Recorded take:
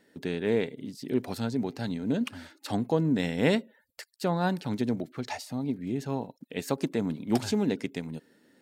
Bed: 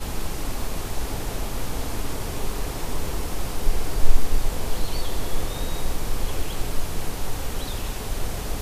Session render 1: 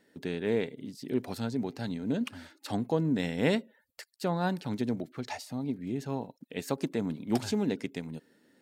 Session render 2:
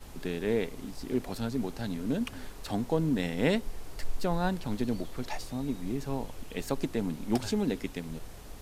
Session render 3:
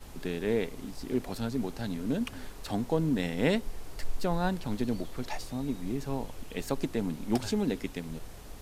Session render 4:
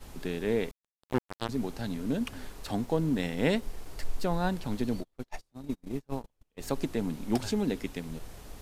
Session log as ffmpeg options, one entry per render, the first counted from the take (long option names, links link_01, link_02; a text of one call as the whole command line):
ffmpeg -i in.wav -af "volume=-2.5dB" out.wav
ffmpeg -i in.wav -i bed.wav -filter_complex "[1:a]volume=-17.5dB[link_01];[0:a][link_01]amix=inputs=2:normalize=0" out.wav
ffmpeg -i in.wav -af anull out.wav
ffmpeg -i in.wav -filter_complex "[0:a]asettb=1/sr,asplit=3[link_01][link_02][link_03];[link_01]atrim=end=0.714[link_04];[link_02]atrim=start=0.71:end=1.49,asetpts=PTS-STARTPTS,afade=type=in:duration=0.004:curve=qsin,afade=type=out:start_time=0.776:duration=0.004:curve=qsin,acrusher=bits=3:mix=0:aa=0.5[link_05];[link_03]atrim=start=1.486[link_06];[link_04][link_05]acrossfade=duration=0.004:curve1=hsin:curve2=qsin[link_07];[link_07][link_06]acrossfade=duration=0.004:curve1=qsin:curve2=hsin,asettb=1/sr,asplit=3[link_08][link_09][link_10];[link_08]atrim=end=2.824[link_11];[link_09]atrim=start=2.82:end=3.92,asetpts=PTS-STARTPTS,afade=type=in:duration=0.004:curve=qsin,afade=type=out:start_time=1.096:duration=0.004:curve=qsin,aeval=exprs='sgn(val(0))*max(abs(val(0))-0.00168,0)':channel_layout=same[link_12];[link_10]atrim=start=3.916[link_13];[link_11][link_12]acrossfade=duration=0.004:curve1=hsin:curve2=qsin[link_14];[link_14][link_13]acrossfade=duration=0.004:curve1=qsin:curve2=hsin,asplit=3[link_15][link_16][link_17];[link_15]afade=type=out:start_time=5:duration=0.02[link_18];[link_16]agate=range=-37dB:threshold=-32dB:ratio=16:release=100:detection=peak,afade=type=in:start_time=5:duration=0.02,afade=type=out:start_time=6.61:duration=0.02[link_19];[link_17]afade=type=in:start_time=6.61:duration=0.02[link_20];[link_18][link_19][link_20]amix=inputs=3:normalize=0" out.wav